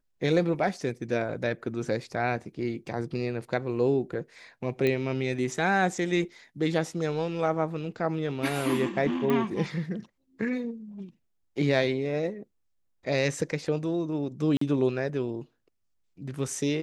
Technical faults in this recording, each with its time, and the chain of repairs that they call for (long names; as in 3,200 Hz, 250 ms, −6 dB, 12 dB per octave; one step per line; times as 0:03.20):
0:04.87: click −15 dBFS
0:09.30: click −16 dBFS
0:14.57–0:14.61: drop-out 44 ms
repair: click removal
repair the gap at 0:14.57, 44 ms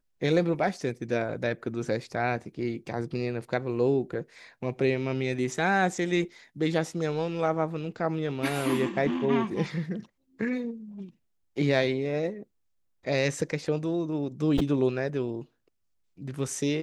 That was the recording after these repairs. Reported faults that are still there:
none of them is left